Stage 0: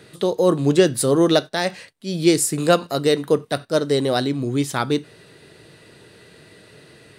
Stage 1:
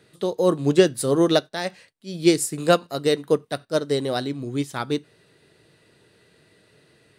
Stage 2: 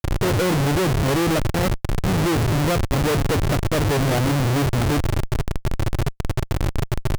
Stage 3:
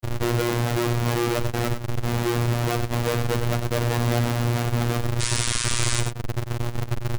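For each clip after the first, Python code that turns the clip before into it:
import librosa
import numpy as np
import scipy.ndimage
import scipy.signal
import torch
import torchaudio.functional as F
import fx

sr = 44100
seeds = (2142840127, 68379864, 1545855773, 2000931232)

y1 = fx.upward_expand(x, sr, threshold_db=-30.0, expansion=1.5)
y2 = fx.dmg_noise_band(y1, sr, seeds[0], low_hz=91.0, high_hz=160.0, level_db=-42.0)
y2 = fx.riaa(y2, sr, side='playback')
y2 = fx.schmitt(y2, sr, flips_db=-26.5)
y3 = fx.spec_paint(y2, sr, seeds[1], shape='noise', start_s=5.2, length_s=0.81, low_hz=900.0, high_hz=10000.0, level_db=-23.0)
y3 = y3 + 10.0 ** (-9.0 / 20.0) * np.pad(y3, (int(97 * sr / 1000.0), 0))[:len(y3)]
y3 = fx.robotise(y3, sr, hz=119.0)
y3 = y3 * librosa.db_to_amplitude(-2.0)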